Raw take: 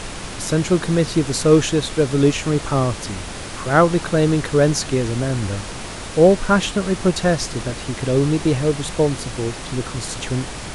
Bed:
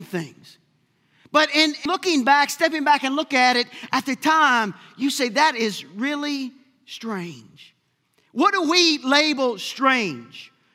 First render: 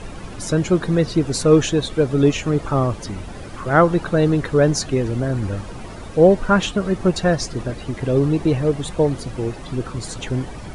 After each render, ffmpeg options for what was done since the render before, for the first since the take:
-af "afftdn=nr=13:nf=-31"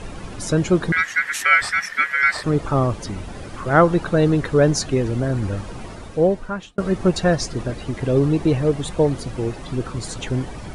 -filter_complex "[0:a]asettb=1/sr,asplit=3[s0][s1][s2];[s0]atrim=end=0.924[s3];[s1]atrim=start=0.92:end=2.44,asetpts=PTS-STARTPTS,afade=t=in:d=0.004:c=qsin,afade=t=out:st=1.516:d=0.004:c=qsin,aeval=exprs='val(0)*sin(2*PI*1800*n/s)':c=same[s4];[s2]atrim=start=2.436[s5];[s3][s4]acrossfade=d=0.004:c1=hsin:c2=qsin[s6];[s6][s5]acrossfade=d=0.004:c1=qsin:c2=hsin,asplit=2[s7][s8];[s7]atrim=end=6.78,asetpts=PTS-STARTPTS,afade=t=out:st=5.83:d=0.95[s9];[s8]atrim=start=6.78,asetpts=PTS-STARTPTS,afade=t=in:d=0.004:c=hsin[s10];[s9][s10]concat=n=2:v=0:a=1"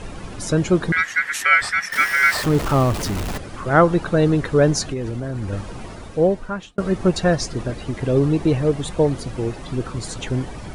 -filter_complex "[0:a]asettb=1/sr,asplit=3[s0][s1][s2];[s0]atrim=end=1.924[s3];[s1]atrim=start=1.92:end=3.38,asetpts=PTS-STARTPTS,afade=t=in:d=0.004:c=qsin,afade=t=out:st=1.456:d=0.004:c=qsin,aeval=exprs='val(0)+0.5*0.0708*sgn(val(0))':c=same[s4];[s2]atrim=start=3.376[s5];[s3][s4]acrossfade=d=0.004:c1=hsin:c2=qsin[s6];[s6][s5]acrossfade=d=0.004:c1=qsin:c2=hsin,asettb=1/sr,asplit=3[s7][s8][s9];[s7]atrim=end=4.894[s10];[s8]atrim=start=4.89:end=5.53,asetpts=PTS-STARTPTS,afade=t=in:d=0.004:c=qsin,afade=t=out:st=0.636:d=0.004:c=qsin,acompressor=threshold=0.0794:ratio=5:attack=3.2:release=140:knee=1:detection=peak[s11];[s9]atrim=start=5.526[s12];[s10][s11]acrossfade=d=0.004:c1=hsin:c2=qsin[s13];[s13][s12]acrossfade=d=0.004:c1=qsin:c2=hsin"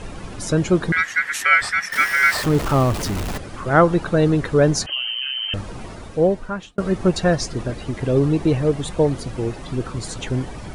-filter_complex "[0:a]asettb=1/sr,asplit=3[s0][s1][s2];[s0]atrim=end=4.864[s3];[s1]atrim=start=4.86:end=5.54,asetpts=PTS-STARTPTS,afade=t=in:d=0.004:c=qsin,afade=t=out:st=0.676:d=0.004:c=qsin,lowpass=f=2700:t=q:w=0.5098,lowpass=f=2700:t=q:w=0.6013,lowpass=f=2700:t=q:w=0.9,lowpass=f=2700:t=q:w=2.563,afreqshift=-3200[s4];[s2]atrim=start=5.536[s5];[s3][s4]acrossfade=d=0.004:c1=hsin:c2=qsin[s6];[s6][s5]acrossfade=d=0.004:c1=qsin:c2=hsin"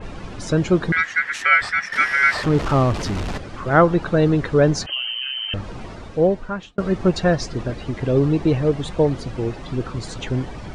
-af "lowpass=5700,adynamicequalizer=threshold=0.0355:dfrequency=3400:dqfactor=0.7:tfrequency=3400:tqfactor=0.7:attack=5:release=100:ratio=0.375:range=2:mode=cutabove:tftype=highshelf"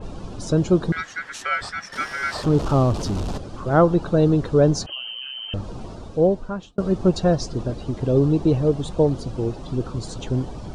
-af "equalizer=f=2000:w=1.4:g=-14.5"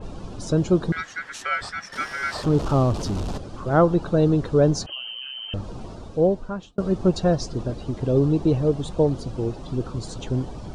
-af "volume=0.841"

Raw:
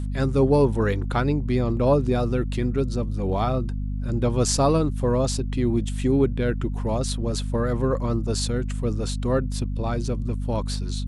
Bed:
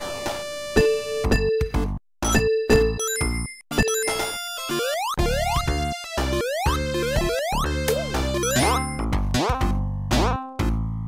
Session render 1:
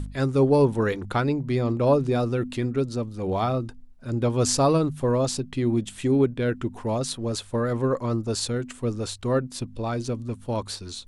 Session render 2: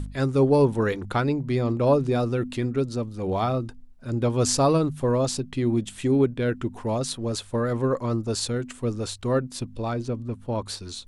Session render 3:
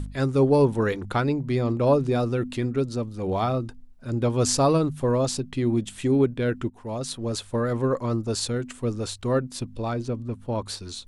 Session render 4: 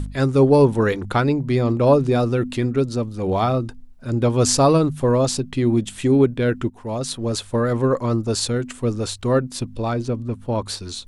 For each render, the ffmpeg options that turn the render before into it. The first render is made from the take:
-af "bandreject=f=50:t=h:w=4,bandreject=f=100:t=h:w=4,bandreject=f=150:t=h:w=4,bandreject=f=200:t=h:w=4,bandreject=f=250:t=h:w=4"
-filter_complex "[0:a]asettb=1/sr,asplit=3[s0][s1][s2];[s0]atrim=end=9.934[s3];[s1]atrim=start=9.93:end=10.66,asetpts=PTS-STARTPTS,afade=t=in:d=0.004:c=qsin,afade=t=out:st=0.726:d=0.004:c=qsin,highshelf=f=3300:g=-10.5[s4];[s2]atrim=start=10.656[s5];[s3][s4]acrossfade=d=0.004:c1=hsin:c2=qsin[s6];[s6][s5]acrossfade=d=0.004:c1=qsin:c2=hsin"
-filter_complex "[0:a]asplit=2[s0][s1];[s0]atrim=end=6.7,asetpts=PTS-STARTPTS,afade=t=out:st=6.696:d=0.004:c=hsin:silence=0.16788[s2];[s1]atrim=start=6.7,asetpts=PTS-STARTPTS,afade=t=in:d=0.76:c=qsin:silence=0.16788[s3];[s2][s3]concat=n=2:v=0:a=1"
-af "volume=1.78"

